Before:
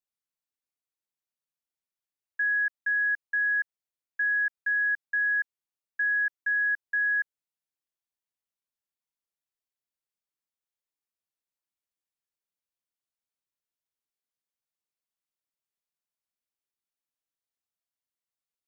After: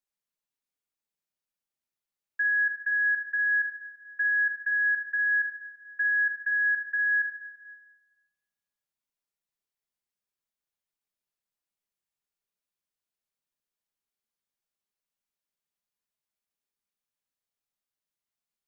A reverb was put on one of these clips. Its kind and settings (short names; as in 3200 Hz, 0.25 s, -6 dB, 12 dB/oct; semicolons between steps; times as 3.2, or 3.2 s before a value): shoebox room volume 1600 m³, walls mixed, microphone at 1.3 m; gain -1 dB